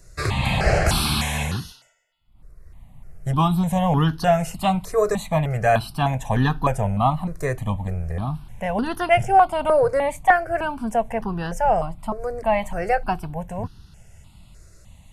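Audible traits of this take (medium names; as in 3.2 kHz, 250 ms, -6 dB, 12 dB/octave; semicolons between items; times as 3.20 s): notches that jump at a steady rate 3.3 Hz 850–2200 Hz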